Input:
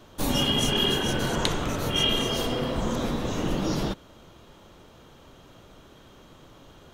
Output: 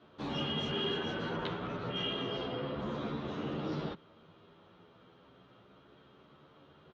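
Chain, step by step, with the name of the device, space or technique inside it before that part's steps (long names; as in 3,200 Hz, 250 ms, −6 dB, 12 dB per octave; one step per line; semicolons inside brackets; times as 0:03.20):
0:01.29–0:02.80: high-frequency loss of the air 86 metres
barber-pole flanger into a guitar amplifier (barber-pole flanger 11 ms +0.31 Hz; soft clipping −20 dBFS, distortion −21 dB; loudspeaker in its box 100–4,000 Hz, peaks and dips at 170 Hz +4 dB, 410 Hz +4 dB, 1,300 Hz +5 dB)
level −6.5 dB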